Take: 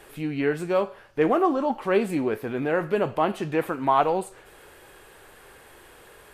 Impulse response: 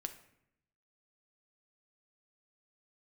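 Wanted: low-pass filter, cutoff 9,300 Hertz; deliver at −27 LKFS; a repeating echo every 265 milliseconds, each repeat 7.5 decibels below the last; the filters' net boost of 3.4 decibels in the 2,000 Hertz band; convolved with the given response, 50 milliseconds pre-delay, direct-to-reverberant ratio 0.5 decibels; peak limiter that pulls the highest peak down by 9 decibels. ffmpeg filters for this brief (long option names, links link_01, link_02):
-filter_complex "[0:a]lowpass=9300,equalizer=frequency=2000:width_type=o:gain=4.5,alimiter=limit=-15.5dB:level=0:latency=1,aecho=1:1:265|530|795|1060|1325:0.422|0.177|0.0744|0.0312|0.0131,asplit=2[link_01][link_02];[1:a]atrim=start_sample=2205,adelay=50[link_03];[link_02][link_03]afir=irnorm=-1:irlink=0,volume=1.5dB[link_04];[link_01][link_04]amix=inputs=2:normalize=0,volume=-3.5dB"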